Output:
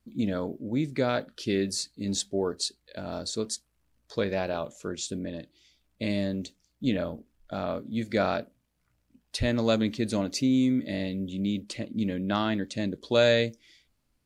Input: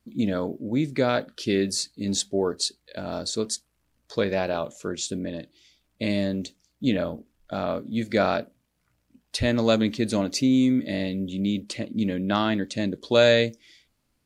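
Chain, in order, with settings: bass shelf 64 Hz +7.5 dB; trim -4 dB

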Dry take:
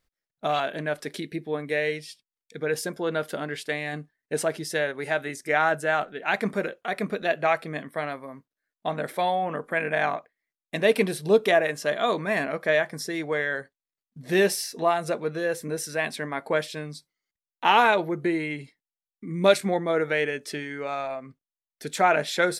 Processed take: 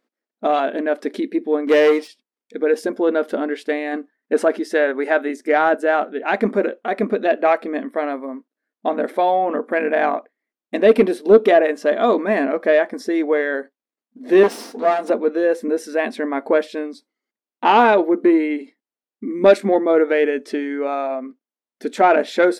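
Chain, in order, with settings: 14.43–15.10 s: comb filter that takes the minimum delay 4.3 ms; tilt EQ -4 dB/octave; 1.67–2.08 s: waveshaping leveller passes 2; brick-wall FIR high-pass 210 Hz; saturation -8 dBFS, distortion -21 dB; 3.91–5.22 s: peaking EQ 1.4 kHz +4.5 dB 1.2 oct; trim +6 dB

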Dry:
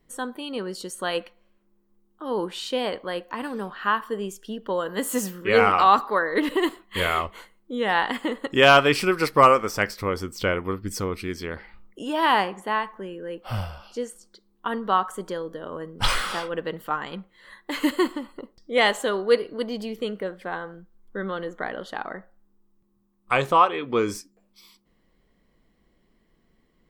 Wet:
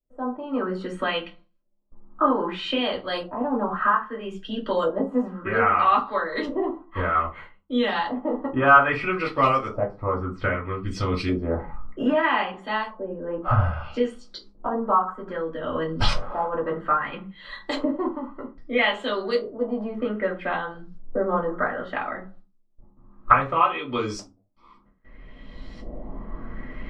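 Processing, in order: recorder AGC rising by 15 dB/s; gate with hold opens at -40 dBFS; LFO low-pass saw up 0.62 Hz 560–5400 Hz; reverberation RT60 0.25 s, pre-delay 3 ms, DRR -2.5 dB; trim -12 dB

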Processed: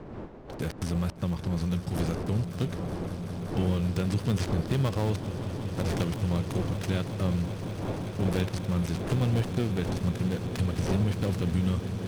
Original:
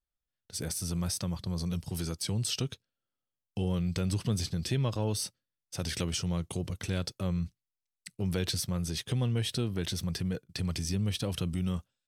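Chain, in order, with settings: dead-time distortion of 0.2 ms; wind noise 430 Hz -44 dBFS; treble shelf 10 kHz -4 dB; in parallel at +2 dB: compression, threshold -37 dBFS, peak gain reduction 12 dB; on the sum: echo with a slow build-up 188 ms, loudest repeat 8, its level -16 dB

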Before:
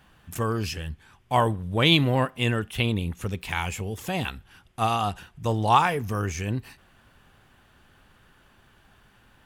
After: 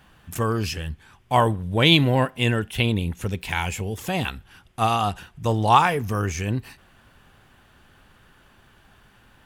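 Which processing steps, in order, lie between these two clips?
1.61–3.96 s: band-stop 1.2 kHz, Q 7.8; trim +3 dB

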